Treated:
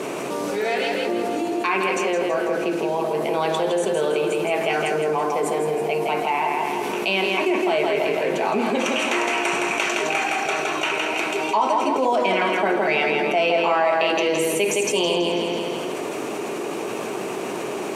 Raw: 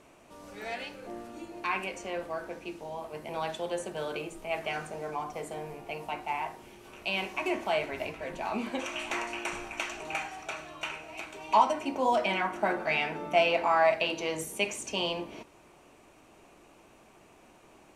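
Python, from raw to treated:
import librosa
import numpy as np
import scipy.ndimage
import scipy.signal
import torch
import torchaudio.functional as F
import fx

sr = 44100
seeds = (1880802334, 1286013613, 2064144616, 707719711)

p1 = scipy.signal.sosfilt(scipy.signal.butter(4, 140.0, 'highpass', fs=sr, output='sos'), x)
p2 = fx.peak_eq(p1, sr, hz=410.0, db=10.0, octaves=0.44)
p3 = p2 + fx.echo_feedback(p2, sr, ms=164, feedback_pct=44, wet_db=-5.0, dry=0)
y = fx.env_flatten(p3, sr, amount_pct=70)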